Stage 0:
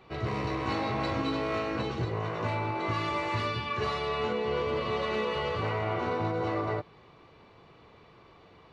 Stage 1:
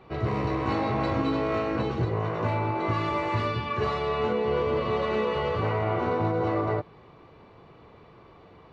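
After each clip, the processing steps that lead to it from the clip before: high shelf 2100 Hz -9.5 dB; gain +5 dB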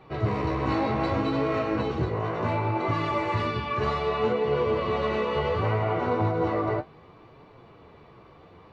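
flange 0.67 Hz, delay 6.2 ms, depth 9.7 ms, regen +44%; gain +4.5 dB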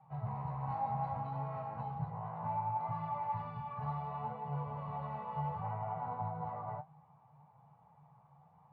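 double band-pass 350 Hz, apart 2.5 oct; gain -2 dB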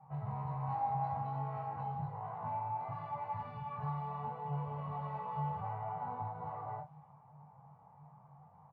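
low-pass opened by the level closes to 1500 Hz, open at -37 dBFS; in parallel at +2 dB: compressor, threshold -48 dBFS, peak gain reduction 15 dB; on the sum: early reflections 21 ms -5 dB, 53 ms -10.5 dB; gain -4.5 dB

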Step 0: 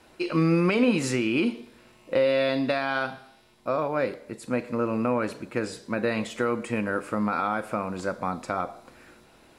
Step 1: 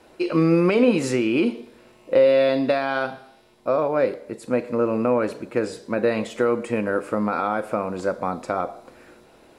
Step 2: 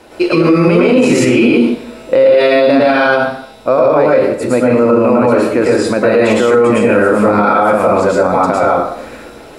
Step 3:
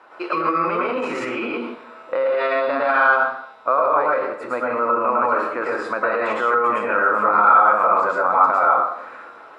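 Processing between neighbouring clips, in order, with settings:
bell 480 Hz +7 dB 1.6 oct
plate-style reverb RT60 0.54 s, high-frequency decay 0.8×, pre-delay 95 ms, DRR -5.5 dB; maximiser +12 dB; gain -1 dB
band-pass 1200 Hz, Q 3.2; gain +3 dB

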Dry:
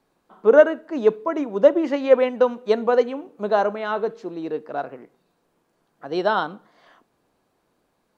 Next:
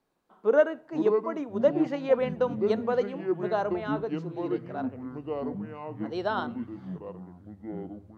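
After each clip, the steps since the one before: echoes that change speed 0.303 s, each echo -6 st, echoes 3, each echo -6 dB; gain -8.5 dB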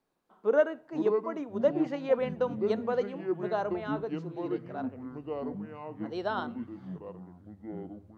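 notches 60/120 Hz; gain -3 dB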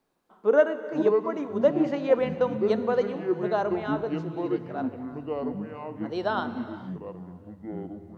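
non-linear reverb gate 0.48 s flat, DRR 12 dB; gain +4.5 dB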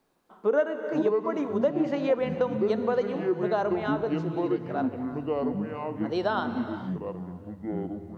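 compressor 2.5:1, threshold -28 dBFS, peak gain reduction 10 dB; gain +4 dB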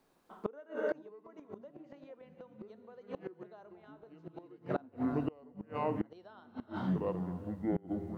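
flipped gate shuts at -21 dBFS, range -28 dB

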